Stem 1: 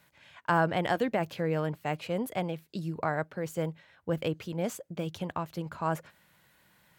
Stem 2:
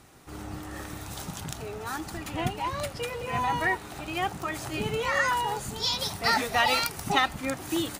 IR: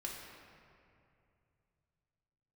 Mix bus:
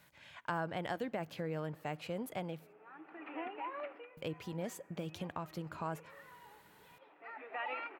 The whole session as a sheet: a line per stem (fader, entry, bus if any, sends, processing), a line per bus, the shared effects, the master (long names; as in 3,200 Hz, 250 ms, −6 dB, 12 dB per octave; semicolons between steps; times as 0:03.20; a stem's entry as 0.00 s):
−1.0 dB, 0.00 s, muted 0:02.73–0:04.17, send −22 dB, downward compressor 2 to 1, threshold −42 dBFS, peak gain reduction 12 dB
−7.5 dB, 1.00 s, send −21.5 dB, Chebyshev band-pass filter 290–2,600 Hz, order 4; downward compressor 2.5 to 1, threshold −32 dBFS, peak gain reduction 8.5 dB; automatic ducking −22 dB, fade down 0.25 s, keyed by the first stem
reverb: on, RT60 2.6 s, pre-delay 3 ms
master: no processing